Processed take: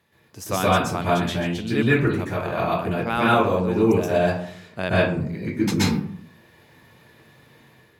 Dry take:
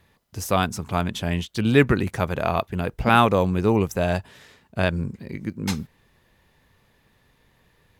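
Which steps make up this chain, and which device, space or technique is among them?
far laptop microphone (convolution reverb RT60 0.55 s, pre-delay 119 ms, DRR −8 dB; high-pass filter 140 Hz 12 dB per octave; automatic gain control gain up to 6 dB)
level −4.5 dB

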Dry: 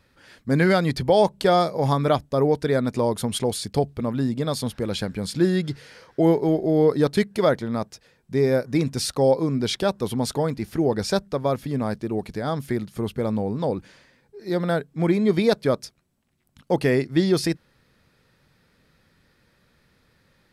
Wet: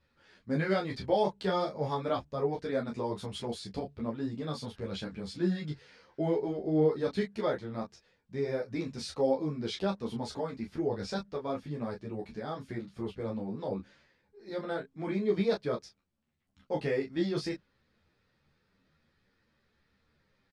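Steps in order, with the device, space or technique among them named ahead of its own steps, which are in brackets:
double-tracking delay 26 ms −5 dB
string-machine ensemble chorus (string-ensemble chorus; low-pass filter 5,700 Hz 12 dB per octave)
level −8.5 dB

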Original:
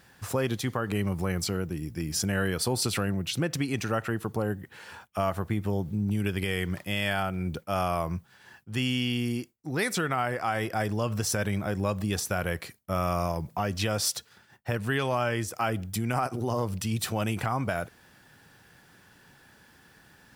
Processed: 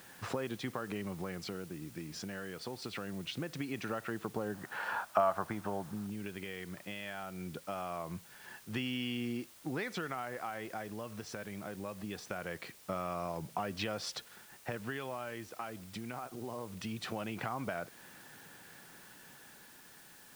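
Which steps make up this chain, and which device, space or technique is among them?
medium wave at night (band-pass filter 170–3,600 Hz; downward compressor 5 to 1, threshold −36 dBFS, peak gain reduction 12 dB; amplitude tremolo 0.22 Hz, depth 51%; steady tone 9,000 Hz −71 dBFS; white noise bed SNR 17 dB)
0:04.54–0:06.07: flat-topped bell 970 Hz +10 dB
level +2 dB

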